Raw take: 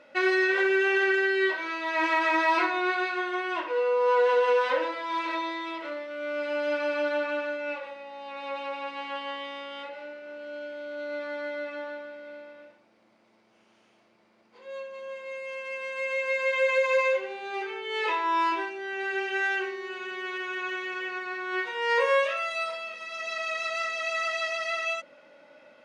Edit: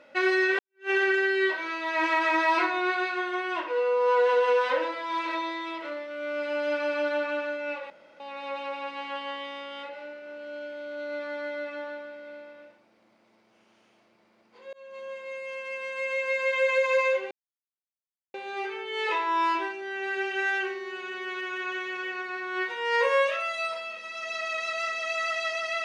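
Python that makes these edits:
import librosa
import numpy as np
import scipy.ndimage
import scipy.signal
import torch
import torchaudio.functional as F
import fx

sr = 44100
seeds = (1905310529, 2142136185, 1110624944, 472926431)

y = fx.edit(x, sr, fx.fade_in_span(start_s=0.59, length_s=0.31, curve='exp'),
    fx.room_tone_fill(start_s=7.9, length_s=0.3),
    fx.fade_in_span(start_s=14.73, length_s=0.25),
    fx.insert_silence(at_s=17.31, length_s=1.03), tone=tone)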